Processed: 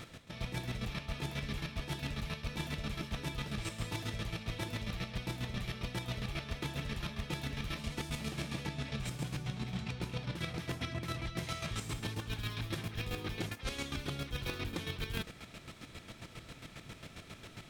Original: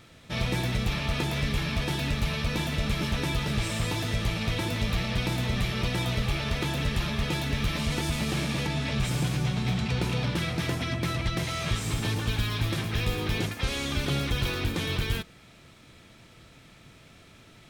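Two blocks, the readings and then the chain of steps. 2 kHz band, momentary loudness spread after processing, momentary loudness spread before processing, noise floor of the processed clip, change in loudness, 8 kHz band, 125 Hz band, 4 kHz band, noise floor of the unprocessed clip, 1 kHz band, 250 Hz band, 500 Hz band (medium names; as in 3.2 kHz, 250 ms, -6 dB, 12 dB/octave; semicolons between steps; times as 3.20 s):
-10.5 dB, 11 LU, 1 LU, -54 dBFS, -11.0 dB, -10.0 dB, -11.0 dB, -10.5 dB, -53 dBFS, -10.0 dB, -10.5 dB, -10.5 dB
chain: square tremolo 7.4 Hz, depth 60%, duty 30%; reverse; compression 16:1, threshold -41 dBFS, peak gain reduction 18.5 dB; reverse; trim +6.5 dB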